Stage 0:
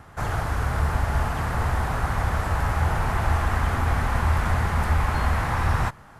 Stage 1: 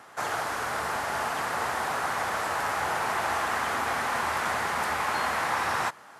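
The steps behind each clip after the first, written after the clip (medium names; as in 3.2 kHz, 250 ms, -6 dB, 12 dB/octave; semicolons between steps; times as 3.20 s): high-pass 370 Hz 12 dB/octave; peaking EQ 6 kHz +4.5 dB 2.3 oct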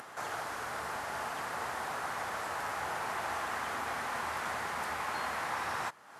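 upward compressor, threshold -31 dBFS; trim -8 dB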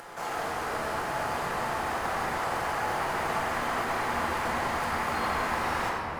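in parallel at -9.5 dB: sample-and-hold 23×; on the sum: reverberation RT60 3.3 s, pre-delay 6 ms, DRR -4.5 dB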